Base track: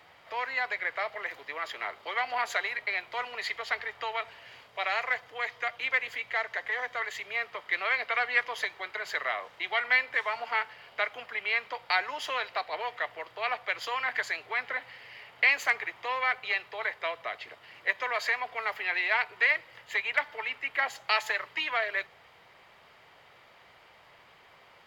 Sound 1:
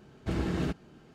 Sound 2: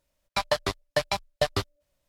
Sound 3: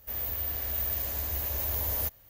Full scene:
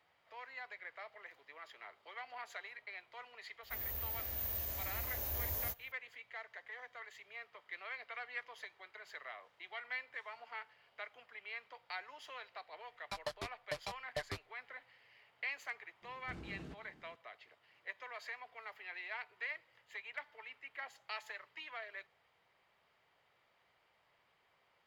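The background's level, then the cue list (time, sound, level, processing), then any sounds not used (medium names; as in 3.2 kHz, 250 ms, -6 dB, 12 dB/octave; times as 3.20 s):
base track -17.5 dB
3.63 s: add 3 -5 dB + chorus 1.4 Hz, delay 18.5 ms, depth 7.4 ms
12.75 s: add 2 -16.5 dB
16.02 s: add 1 -10.5 dB + compression, threshold -35 dBFS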